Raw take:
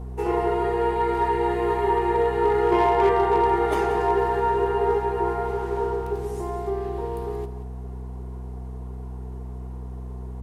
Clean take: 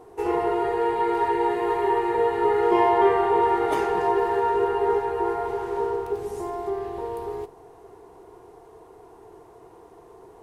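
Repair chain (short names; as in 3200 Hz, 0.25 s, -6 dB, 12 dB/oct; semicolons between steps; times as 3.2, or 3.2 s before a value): clip repair -12.5 dBFS; de-hum 63 Hz, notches 4; inverse comb 0.181 s -12 dB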